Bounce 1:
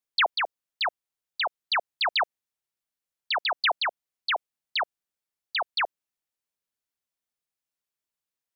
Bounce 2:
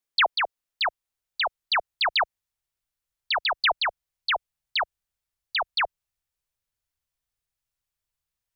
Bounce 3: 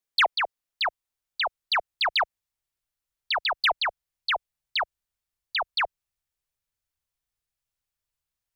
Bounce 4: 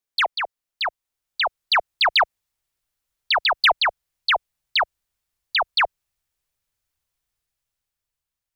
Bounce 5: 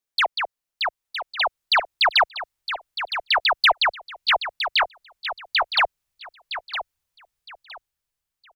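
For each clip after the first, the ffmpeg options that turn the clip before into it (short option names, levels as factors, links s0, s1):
-af "asubboost=boost=10.5:cutoff=82,volume=1.26"
-af "aeval=exprs='0.188*(cos(1*acos(clip(val(0)/0.188,-1,1)))-cos(1*PI/2))+0.0106*(cos(3*acos(clip(val(0)/0.188,-1,1)))-cos(3*PI/2))+0.00133*(cos(5*acos(clip(val(0)/0.188,-1,1)))-cos(5*PI/2))':c=same"
-af "dynaudnorm=f=360:g=7:m=2.11"
-af "aecho=1:1:963|1926|2889:0.316|0.0759|0.0182"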